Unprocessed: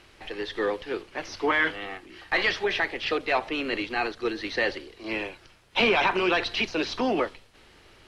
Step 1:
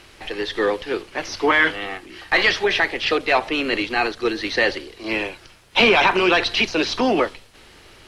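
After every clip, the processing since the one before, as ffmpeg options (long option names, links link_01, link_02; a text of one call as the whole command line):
ffmpeg -i in.wav -af "highshelf=frequency=5300:gain=5.5,volume=6.5dB" out.wav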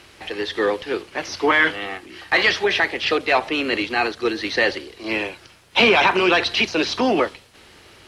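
ffmpeg -i in.wav -af "highpass=57" out.wav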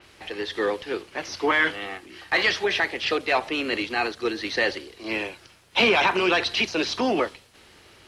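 ffmpeg -i in.wav -af "adynamicequalizer=threshold=0.0316:dfrequency=4800:dqfactor=0.7:tfrequency=4800:tqfactor=0.7:attack=5:release=100:ratio=0.375:range=1.5:mode=boostabove:tftype=highshelf,volume=-4.5dB" out.wav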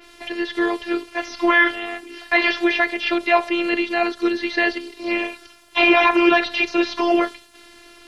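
ffmpeg -i in.wav -filter_complex "[0:a]acrossover=split=3400[link_01][link_02];[link_02]acompressor=threshold=-46dB:ratio=4:attack=1:release=60[link_03];[link_01][link_03]amix=inputs=2:normalize=0,afftfilt=real='hypot(re,im)*cos(PI*b)':imag='0':win_size=512:overlap=0.75,volume=9dB" out.wav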